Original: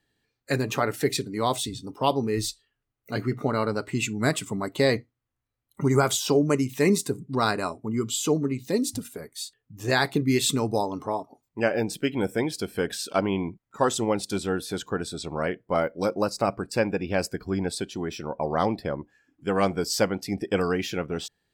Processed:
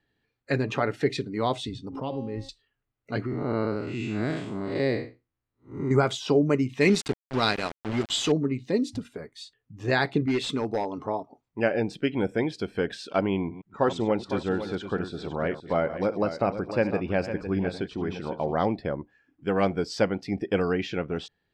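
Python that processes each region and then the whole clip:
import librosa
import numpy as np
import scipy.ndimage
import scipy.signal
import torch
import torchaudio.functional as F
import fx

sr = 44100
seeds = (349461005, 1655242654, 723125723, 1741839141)

y = fx.chain(x, sr, fx.low_shelf(hz=330.0, db=10.0),
    fx.comb_fb(f0_hz=270.0, decay_s=1.2, harmonics='all', damping=0.0, mix_pct=80),
    fx.pre_swell(db_per_s=61.0), at=(1.89, 2.49))
y = fx.chain(y, sr, fx.spec_blur(span_ms=188.0),
    fx.peak_eq(hz=340.0, db=5.5, octaves=0.39), at=(3.26, 5.91))
y = fx.chain(y, sr, fx.band_shelf(hz=5500.0, db=9.5, octaves=2.9),
    fx.sample_gate(floor_db=-27.5), at=(6.81, 8.32))
y = fx.chain(y, sr, fx.peak_eq(hz=110.0, db=-8.0, octaves=1.6),
    fx.overload_stage(gain_db=20.0), at=(10.26, 10.98))
y = fx.chain(y, sr, fx.reverse_delay(ms=124, wet_db=-13.5),
    fx.high_shelf(hz=5700.0, db=-7.5),
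    fx.echo_single(ms=504, db=-10.5), at=(13.37, 18.53))
y = scipy.signal.sosfilt(scipy.signal.butter(2, 3400.0, 'lowpass', fs=sr, output='sos'), y)
y = fx.dynamic_eq(y, sr, hz=1100.0, q=2.2, threshold_db=-38.0, ratio=4.0, max_db=-4)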